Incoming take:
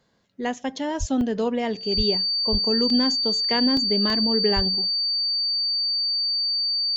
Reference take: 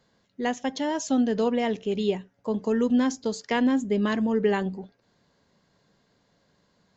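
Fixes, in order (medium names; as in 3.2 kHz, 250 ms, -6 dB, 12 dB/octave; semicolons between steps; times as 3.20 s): band-stop 4.6 kHz, Q 30; de-plosive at 0.99/1.96/2.51/4.55 s; interpolate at 1.21/2.90/3.77/4.10 s, 2.2 ms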